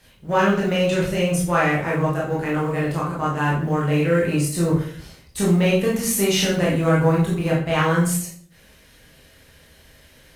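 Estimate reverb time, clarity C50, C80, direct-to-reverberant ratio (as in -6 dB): 0.50 s, 3.5 dB, 8.5 dB, -5.5 dB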